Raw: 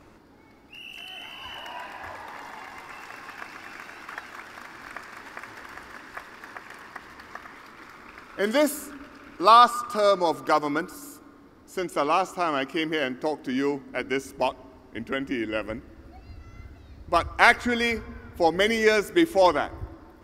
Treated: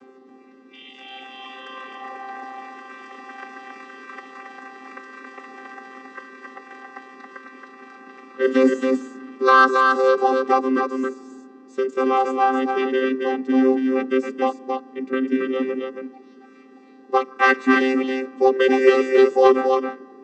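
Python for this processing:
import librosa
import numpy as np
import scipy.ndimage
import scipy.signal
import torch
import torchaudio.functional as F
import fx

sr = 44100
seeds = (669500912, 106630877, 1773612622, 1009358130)

p1 = fx.chord_vocoder(x, sr, chord='bare fifth', root=60)
p2 = np.clip(10.0 ** (12.0 / 20.0) * p1, -1.0, 1.0) / 10.0 ** (12.0 / 20.0)
p3 = p1 + (p2 * librosa.db_to_amplitude(-6.5))
p4 = p3 + 10.0 ** (-4.0 / 20.0) * np.pad(p3, (int(274 * sr / 1000.0), 0))[:len(p3)]
y = p4 * librosa.db_to_amplitude(2.0)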